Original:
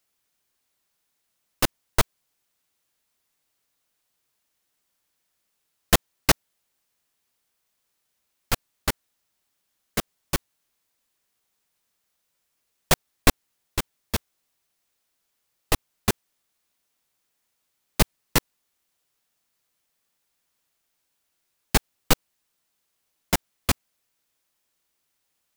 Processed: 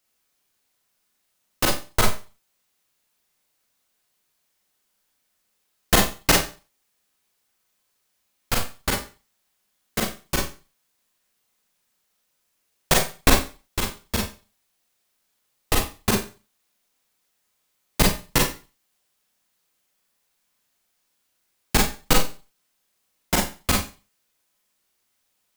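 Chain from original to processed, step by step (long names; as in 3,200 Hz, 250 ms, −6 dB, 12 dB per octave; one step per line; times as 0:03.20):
four-comb reverb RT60 0.33 s, combs from 30 ms, DRR −1 dB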